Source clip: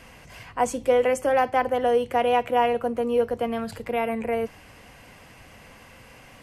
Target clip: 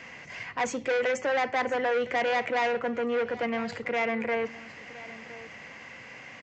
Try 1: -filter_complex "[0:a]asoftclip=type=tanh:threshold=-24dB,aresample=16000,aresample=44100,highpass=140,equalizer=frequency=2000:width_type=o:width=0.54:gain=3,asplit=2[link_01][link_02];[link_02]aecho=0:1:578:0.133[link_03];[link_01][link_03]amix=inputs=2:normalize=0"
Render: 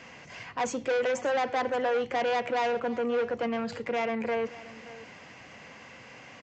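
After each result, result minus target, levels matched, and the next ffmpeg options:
echo 435 ms early; 2,000 Hz band −3.5 dB
-filter_complex "[0:a]asoftclip=type=tanh:threshold=-24dB,aresample=16000,aresample=44100,highpass=140,equalizer=frequency=2000:width_type=o:width=0.54:gain=3,asplit=2[link_01][link_02];[link_02]aecho=0:1:1013:0.133[link_03];[link_01][link_03]amix=inputs=2:normalize=0"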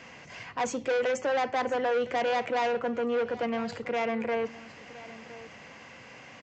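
2,000 Hz band −3.5 dB
-filter_complex "[0:a]asoftclip=type=tanh:threshold=-24dB,aresample=16000,aresample=44100,highpass=140,equalizer=frequency=2000:width_type=o:width=0.54:gain=10,asplit=2[link_01][link_02];[link_02]aecho=0:1:1013:0.133[link_03];[link_01][link_03]amix=inputs=2:normalize=0"

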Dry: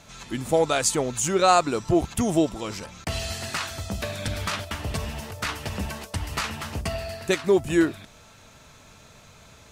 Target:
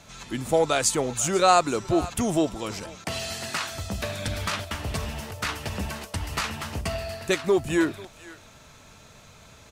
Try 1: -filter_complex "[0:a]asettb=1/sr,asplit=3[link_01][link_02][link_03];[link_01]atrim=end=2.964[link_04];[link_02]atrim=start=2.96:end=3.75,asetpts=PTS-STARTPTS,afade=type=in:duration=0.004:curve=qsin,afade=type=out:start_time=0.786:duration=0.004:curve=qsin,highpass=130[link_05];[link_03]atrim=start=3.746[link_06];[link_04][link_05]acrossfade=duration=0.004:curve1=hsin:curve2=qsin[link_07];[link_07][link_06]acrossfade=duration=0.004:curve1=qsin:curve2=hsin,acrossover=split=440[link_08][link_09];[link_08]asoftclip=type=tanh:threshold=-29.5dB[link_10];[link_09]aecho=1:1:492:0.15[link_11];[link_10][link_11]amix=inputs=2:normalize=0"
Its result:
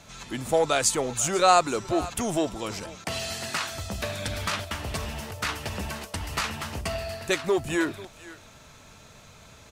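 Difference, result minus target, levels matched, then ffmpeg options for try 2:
soft clipping: distortion +8 dB
-filter_complex "[0:a]asettb=1/sr,asplit=3[link_01][link_02][link_03];[link_01]atrim=end=2.964[link_04];[link_02]atrim=start=2.96:end=3.75,asetpts=PTS-STARTPTS,afade=type=in:duration=0.004:curve=qsin,afade=type=out:start_time=0.786:duration=0.004:curve=qsin,highpass=130[link_05];[link_03]atrim=start=3.746[link_06];[link_04][link_05]acrossfade=duration=0.004:curve1=hsin:curve2=qsin[link_07];[link_07][link_06]acrossfade=duration=0.004:curve1=qsin:curve2=hsin,acrossover=split=440[link_08][link_09];[link_08]asoftclip=type=tanh:threshold=-20.5dB[link_10];[link_09]aecho=1:1:492:0.15[link_11];[link_10][link_11]amix=inputs=2:normalize=0"

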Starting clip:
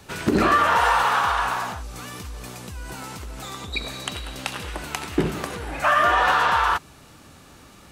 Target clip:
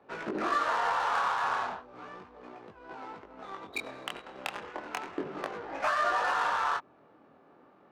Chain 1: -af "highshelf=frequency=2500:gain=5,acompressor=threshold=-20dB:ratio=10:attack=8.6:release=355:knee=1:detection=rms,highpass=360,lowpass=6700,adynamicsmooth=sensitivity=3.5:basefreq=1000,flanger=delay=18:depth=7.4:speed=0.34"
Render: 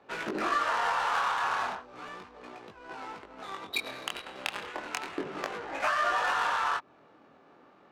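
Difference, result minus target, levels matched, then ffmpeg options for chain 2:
4,000 Hz band +4.0 dB
-af "highshelf=frequency=2500:gain=-5.5,acompressor=threshold=-20dB:ratio=10:attack=8.6:release=355:knee=1:detection=rms,highpass=360,lowpass=6700,adynamicsmooth=sensitivity=3.5:basefreq=1000,flanger=delay=18:depth=7.4:speed=0.34"

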